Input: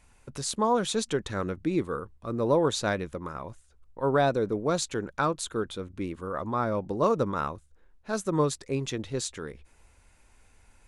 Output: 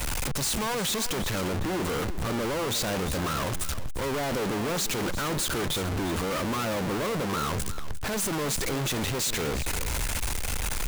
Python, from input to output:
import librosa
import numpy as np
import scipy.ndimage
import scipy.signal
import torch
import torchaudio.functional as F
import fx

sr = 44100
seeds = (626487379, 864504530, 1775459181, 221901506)

y = np.sign(x) * np.sqrt(np.mean(np.square(x)))
y = y + 10.0 ** (-11.5 / 20.0) * np.pad(y, (int(351 * sr / 1000.0), 0))[:len(y)]
y = fx.band_widen(y, sr, depth_pct=40)
y = F.gain(torch.from_numpy(y), 1.5).numpy()